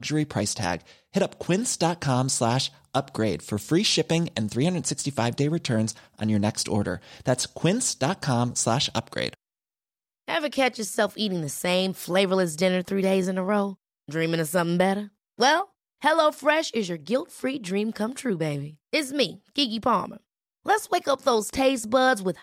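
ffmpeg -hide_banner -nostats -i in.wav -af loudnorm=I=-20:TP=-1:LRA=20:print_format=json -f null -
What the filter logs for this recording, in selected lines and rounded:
"input_i" : "-25.0",
"input_tp" : "-7.6",
"input_lra" : "2.6",
"input_thresh" : "-35.1",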